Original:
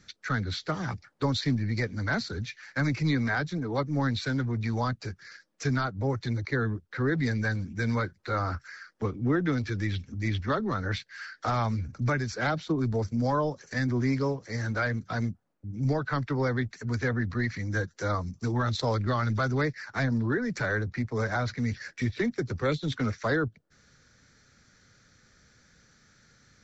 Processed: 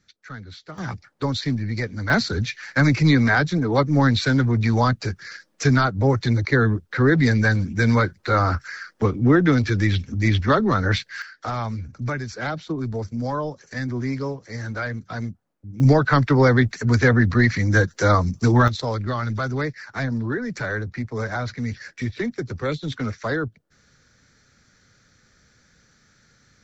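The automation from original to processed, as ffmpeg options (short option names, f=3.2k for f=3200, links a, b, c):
-af "asetnsamples=n=441:p=0,asendcmd='0.78 volume volume 3dB;2.1 volume volume 10dB;11.22 volume volume 0.5dB;15.8 volume volume 12dB;18.68 volume volume 2dB',volume=-8dB"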